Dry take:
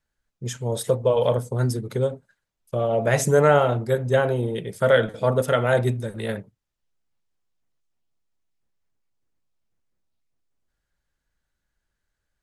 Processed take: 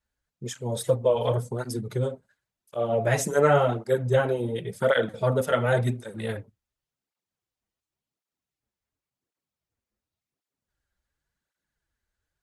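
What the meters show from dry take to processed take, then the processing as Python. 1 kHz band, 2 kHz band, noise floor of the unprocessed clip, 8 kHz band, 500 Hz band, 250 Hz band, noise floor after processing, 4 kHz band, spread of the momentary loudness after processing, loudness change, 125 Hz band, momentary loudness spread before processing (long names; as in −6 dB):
−3.0 dB, −3.0 dB, −81 dBFS, −3.0 dB, −3.5 dB, −3.0 dB, below −85 dBFS, −3.0 dB, 12 LU, −3.0 dB, −3.5 dB, 13 LU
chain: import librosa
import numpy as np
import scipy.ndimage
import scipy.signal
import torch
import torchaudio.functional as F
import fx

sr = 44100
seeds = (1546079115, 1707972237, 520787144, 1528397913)

y = fx.flanger_cancel(x, sr, hz=0.91, depth_ms=7.6)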